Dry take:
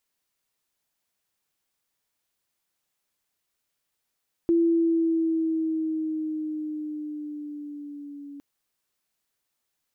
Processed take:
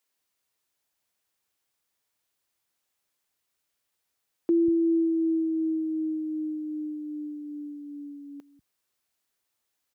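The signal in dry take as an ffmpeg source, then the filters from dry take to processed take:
-f lavfi -i "aevalsrc='pow(10,(-17-21*t/3.91)/20)*sin(2*PI*337*3.91/(-3*log(2)/12)*(exp(-3*log(2)/12*t/3.91)-1))':d=3.91:s=44100"
-filter_complex "[0:a]highpass=42,acrossover=split=180[a][b];[a]adelay=190[c];[c][b]amix=inputs=2:normalize=0"

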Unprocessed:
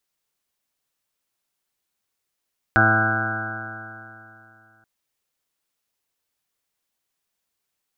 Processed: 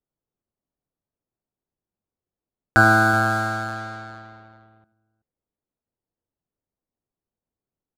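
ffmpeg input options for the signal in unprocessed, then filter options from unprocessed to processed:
-f lavfi -i "aevalsrc='0.0944*pow(10,-3*t/2.82)*sin(2*PI*109.03*t)+0.0562*pow(10,-3*t/2.82)*sin(2*PI*218.26*t)+0.0596*pow(10,-3*t/2.82)*sin(2*PI*327.88*t)+0.0158*pow(10,-3*t/2.82)*sin(2*PI*438.09*t)+0.0188*pow(10,-3*t/2.82)*sin(2*PI*549.07*t)+0.0562*pow(10,-3*t/2.82)*sin(2*PI*661.03*t)+0.0841*pow(10,-3*t/2.82)*sin(2*PI*774.13*t)+0.0112*pow(10,-3*t/2.82)*sin(2*PI*888.58*t)+0.02*pow(10,-3*t/2.82)*sin(2*PI*1004.56*t)+0.0168*pow(10,-3*t/2.82)*sin(2*PI*1122.22*t)+0.0422*pow(10,-3*t/2.82)*sin(2*PI*1241.76*t)+0.0944*pow(10,-3*t/2.82)*sin(2*PI*1363.34*t)+0.168*pow(10,-3*t/2.82)*sin(2*PI*1487.11*t)+0.0944*pow(10,-3*t/2.82)*sin(2*PI*1613.24*t)':d=2.08:s=44100"
-filter_complex "[0:a]asplit=2[a][b];[b]alimiter=limit=-14dB:level=0:latency=1,volume=-2.5dB[c];[a][c]amix=inputs=2:normalize=0,aecho=1:1:79|377:0.188|0.158,adynamicsmooth=sensitivity=8:basefreq=520"

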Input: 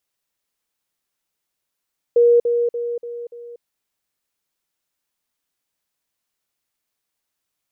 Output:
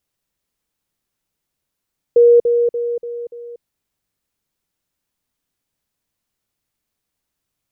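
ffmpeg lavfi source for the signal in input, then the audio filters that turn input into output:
-f lavfi -i "aevalsrc='pow(10,(-9.5-6*floor(t/0.29))/20)*sin(2*PI*475*t)*clip(min(mod(t,0.29),0.24-mod(t,0.29))/0.005,0,1)':d=1.45:s=44100"
-af "lowshelf=f=310:g=12"

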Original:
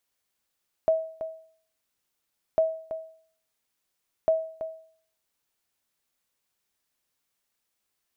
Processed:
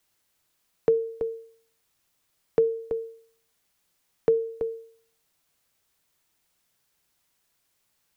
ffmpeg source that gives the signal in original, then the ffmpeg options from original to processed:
-f lavfi -i "aevalsrc='0.178*(sin(2*PI*644*mod(t,1.7))*exp(-6.91*mod(t,1.7)/0.53)+0.282*sin(2*PI*644*max(mod(t,1.7)-0.33,0))*exp(-6.91*max(mod(t,1.7)-0.33,0)/0.53))':d=5.1:s=44100"
-filter_complex "[0:a]asplit=2[a][b];[b]acompressor=threshold=-32dB:ratio=6,volume=1.5dB[c];[a][c]amix=inputs=2:normalize=0,afreqshift=-190"

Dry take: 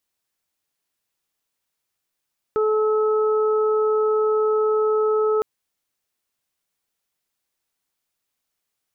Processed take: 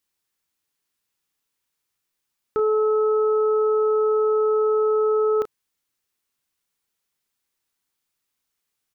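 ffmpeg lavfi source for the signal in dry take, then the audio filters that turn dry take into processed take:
-f lavfi -i "aevalsrc='0.141*sin(2*PI*431*t)+0.02*sin(2*PI*862*t)+0.0501*sin(2*PI*1293*t)':d=2.86:s=44100"
-filter_complex "[0:a]equalizer=f=650:t=o:w=0.41:g=-7,asplit=2[a][b];[b]adelay=33,volume=-10dB[c];[a][c]amix=inputs=2:normalize=0"

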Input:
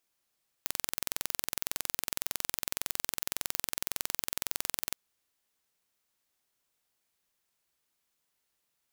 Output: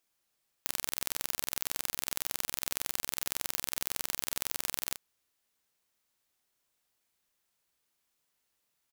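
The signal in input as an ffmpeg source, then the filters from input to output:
-f lavfi -i "aevalsrc='0.668*eq(mod(n,2023),0)':d=4.31:s=44100"
-filter_complex "[0:a]asplit=2[a][b];[b]adelay=32,volume=-10.5dB[c];[a][c]amix=inputs=2:normalize=0"

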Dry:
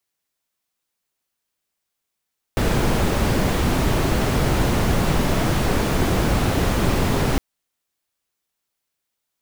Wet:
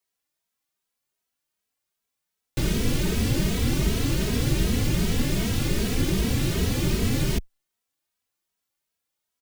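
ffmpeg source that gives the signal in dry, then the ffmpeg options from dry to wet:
-f lavfi -i "anoisesrc=c=brown:a=0.556:d=4.81:r=44100:seed=1"
-filter_complex "[0:a]acrossover=split=490|2000[a][b][c];[b]aeval=exprs='(mod(31.6*val(0)+1,2)-1)/31.6':c=same[d];[a][d][c]amix=inputs=3:normalize=0,asplit=2[e][f];[f]adelay=2.8,afreqshift=2.6[g];[e][g]amix=inputs=2:normalize=1"

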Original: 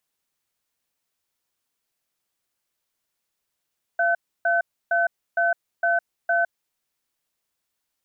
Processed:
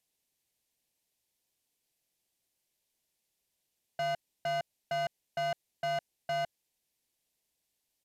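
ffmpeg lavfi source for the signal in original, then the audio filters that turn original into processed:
-f lavfi -i "aevalsrc='0.0944*(sin(2*PI*685*t)+sin(2*PI*1520*t))*clip(min(mod(t,0.46),0.16-mod(t,0.46))/0.005,0,1)':d=2.7:s=44100"
-af "equalizer=f=1.3k:t=o:w=0.72:g=-14,asoftclip=type=hard:threshold=-30.5dB,aresample=32000,aresample=44100"

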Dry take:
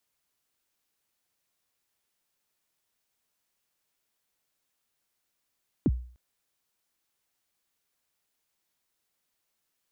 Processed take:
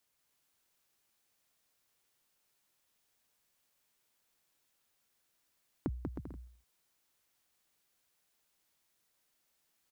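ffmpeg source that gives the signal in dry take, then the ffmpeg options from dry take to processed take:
-f lavfi -i "aevalsrc='0.141*pow(10,-3*t/0.46)*sin(2*PI*(360*0.042/log(61/360)*(exp(log(61/360)*min(t,0.042)/0.042)-1)+61*max(t-0.042,0)))':d=0.3:s=44100"
-filter_complex "[0:a]acompressor=threshold=-35dB:ratio=6,asplit=2[a][b];[b]aecho=0:1:190|313.5|393.8|446|479.9:0.631|0.398|0.251|0.158|0.1[c];[a][c]amix=inputs=2:normalize=0"

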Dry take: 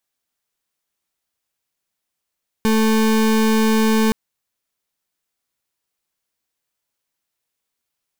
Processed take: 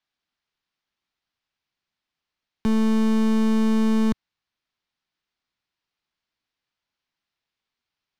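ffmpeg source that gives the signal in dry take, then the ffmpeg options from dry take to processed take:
-f lavfi -i "aevalsrc='0.168*(2*lt(mod(220*t,1),0.33)-1)':d=1.47:s=44100"
-filter_complex "[0:a]lowpass=f=4.9k:w=0.5412,lowpass=f=4.9k:w=1.3066,equalizer=f=510:w=1.6:g=-6,acrossover=split=110[a][b];[b]volume=17dB,asoftclip=hard,volume=-17dB[c];[a][c]amix=inputs=2:normalize=0"

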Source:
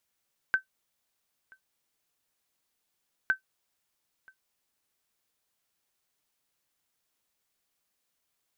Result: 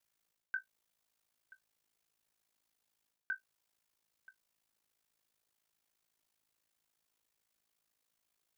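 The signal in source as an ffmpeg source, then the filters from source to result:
-f lavfi -i "aevalsrc='0.168*(sin(2*PI*1540*mod(t,2.76))*exp(-6.91*mod(t,2.76)/0.11)+0.0376*sin(2*PI*1540*max(mod(t,2.76)-0.98,0))*exp(-6.91*max(mod(t,2.76)-0.98,0)/0.11))':d=5.52:s=44100"
-af "areverse,acompressor=threshold=-35dB:ratio=6,areverse,aeval=exprs='val(0)*sin(2*PI*27*n/s)':c=same"

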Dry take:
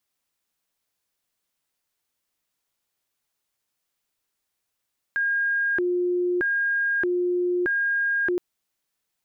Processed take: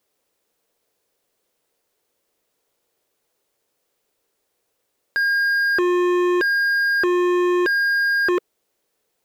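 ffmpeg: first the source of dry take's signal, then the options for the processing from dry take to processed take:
-f lavfi -i "aevalsrc='0.0944*sin(2*PI*(988*t+632/0.8*(0.5-abs(mod(0.8*t,1)-0.5))))':d=3.22:s=44100"
-af "equalizer=f=460:t=o:w=1.2:g=14.5,acontrast=38,volume=17.5dB,asoftclip=hard,volume=-17.5dB"

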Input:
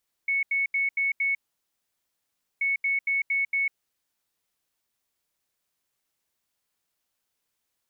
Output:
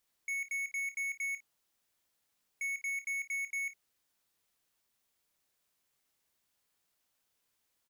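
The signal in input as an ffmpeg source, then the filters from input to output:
-f lavfi -i "aevalsrc='0.0794*sin(2*PI*2210*t)*clip(min(mod(mod(t,2.33),0.23),0.15-mod(mod(t,2.33),0.23))/0.005,0,1)*lt(mod(t,2.33),1.15)':d=4.66:s=44100"
-filter_complex "[0:a]asoftclip=type=tanh:threshold=-35dB,asplit=2[a][b];[b]aecho=0:1:28|55:0.251|0.133[c];[a][c]amix=inputs=2:normalize=0"

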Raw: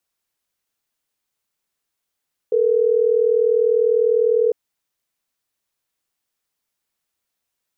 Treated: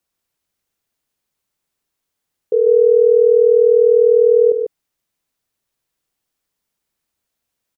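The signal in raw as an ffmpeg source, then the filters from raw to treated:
-f lavfi -i "aevalsrc='0.15*(sin(2*PI*440*t)+sin(2*PI*480*t))*clip(min(mod(t,6),2-mod(t,6))/0.005,0,1)':d=3.12:s=44100"
-filter_complex "[0:a]lowshelf=f=490:g=6,asplit=2[a][b];[b]aecho=0:1:146:0.531[c];[a][c]amix=inputs=2:normalize=0"

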